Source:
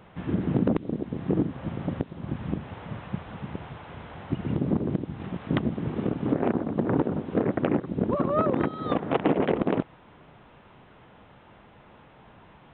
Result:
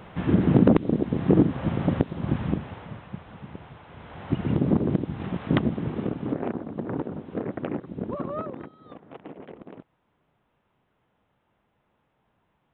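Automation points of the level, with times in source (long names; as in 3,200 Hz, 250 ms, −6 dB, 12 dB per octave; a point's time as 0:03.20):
0:02.36 +6.5 dB
0:03.06 −5 dB
0:03.89 −5 dB
0:04.34 +3.5 dB
0:05.54 +3.5 dB
0:06.63 −6 dB
0:08.30 −6 dB
0:08.79 −19 dB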